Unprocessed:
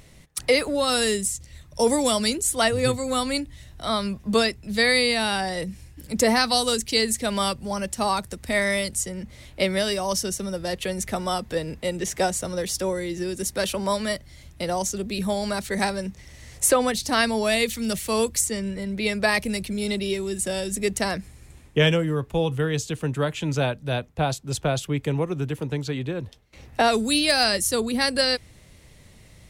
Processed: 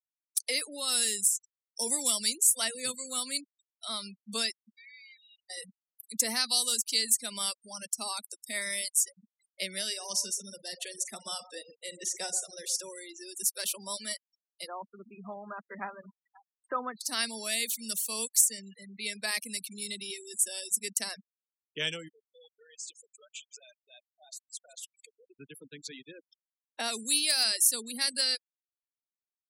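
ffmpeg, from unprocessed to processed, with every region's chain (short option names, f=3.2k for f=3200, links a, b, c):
-filter_complex "[0:a]asettb=1/sr,asplit=3[a][b][c];[a]atrim=end=4.694[d];[b]atrim=start=4.69:end=5.5,asetpts=PTS-STARTPTS,afade=t=in:d=0.004:c=qsin,afade=t=out:st=0.806:d=0.004:c=qsin,acompressor=threshold=-23dB:ratio=20:attack=3.2:release=140:knee=1:detection=peak,asplit=3[e][f][g];[e]bandpass=f=270:t=q:w=8,volume=0dB[h];[f]bandpass=f=2.29k:t=q:w=8,volume=-6dB[i];[g]bandpass=f=3.01k:t=q:w=8,volume=-9dB[j];[h][i][j]amix=inputs=3:normalize=0[k];[c]atrim=start=5.496[l];[d][k]acrossfade=d=0.004:c1=hsin:c2=qsin[m];[m][l]acrossfade=d=0.004:c1=qsin:c2=hsin,asettb=1/sr,asplit=3[n][o][p];[n]atrim=end=9.874[q];[o]atrim=start=9.87:end=12.83,asetpts=PTS-STARTPTS,afade=t=in:d=0.004:c=qsin,afade=t=out:st=2.956:d=0.004:c=qsin,acrossover=split=9600[r][s];[s]acompressor=threshold=-49dB:ratio=4:attack=1:release=60[t];[r][t]amix=inputs=2:normalize=0,asplit=2[u][v];[v]adelay=46,volume=-12dB[w];[u][w]amix=inputs=2:normalize=0,atrim=end_sample=130536,asplit=2[x][y];[y]adelay=127,lowpass=f=920:p=1,volume=-8dB,asplit=2[z][aa];[aa]adelay=127,lowpass=f=920:p=1,volume=0.43,asplit=2[ab][ac];[ac]adelay=127,lowpass=f=920:p=1,volume=0.43,asplit=2[ad][ae];[ae]adelay=127,lowpass=f=920:p=1,volume=0.43,asplit=2[af][ag];[ag]adelay=127,lowpass=f=920:p=1,volume=0.43[ah];[x][z][ab][ad][af][ah]amix=inputs=6:normalize=0,atrim=end_sample=130536[ai];[p]atrim=start=12.826[aj];[q][ai]acrossfade=d=0.004:c1=hsin:c2=qsin[ak];[ak][aj]acrossfade=d=0.004:c1=qsin:c2=hsin,asettb=1/sr,asplit=3[al][am][an];[al]atrim=end=14.674[ao];[am]atrim=start=14.67:end=17.01,asetpts=PTS-STARTPTS,afade=t=in:d=0.004:c=qsin,afade=t=out:st=2.336:d=0.004:c=qsin,lowpass=f=1.2k:t=q:w=3.1,aecho=1:1:530:0.119,atrim=end_sample=103194[ap];[an]atrim=start=17.006[aq];[ao][ap]acrossfade=d=0.004:c1=hsin:c2=qsin[ar];[ar][aq]acrossfade=d=0.004:c1=qsin:c2=hsin,asettb=1/sr,asplit=3[as][at][au];[as]atrim=end=22.084[av];[at]atrim=start=22.08:end=25.35,asetpts=PTS-STARTPTS,afade=t=in:d=0.004:c=qsin,afade=t=out:st=3.266:d=0.004:c=qsin,lowpass=11k,acompressor=threshold=-31dB:ratio=12:attack=3.2:release=140:knee=1:detection=peak,aecho=1:1:158|316|474|632|790:0.251|0.126|0.0628|0.0314|0.0157,atrim=end_sample=144207[aw];[au]atrim=start=25.346[ax];[av][aw]acrossfade=d=0.004:c1=hsin:c2=qsin[ay];[ay][ax]acrossfade=d=0.004:c1=qsin:c2=hsin,aderivative,afftfilt=real='re*gte(hypot(re,im),0.00794)':imag='im*gte(hypot(re,im),0.00794)':win_size=1024:overlap=0.75,equalizer=f=220:w=1:g=13"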